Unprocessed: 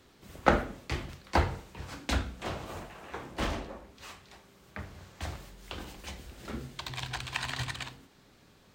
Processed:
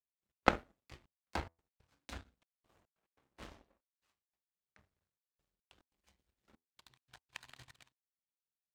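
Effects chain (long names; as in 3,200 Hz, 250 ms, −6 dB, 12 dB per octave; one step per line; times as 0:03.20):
gate pattern "x.x.xxxxxx..x" 142 BPM
hum removal 82.63 Hz, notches 14
power curve on the samples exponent 2
level +1 dB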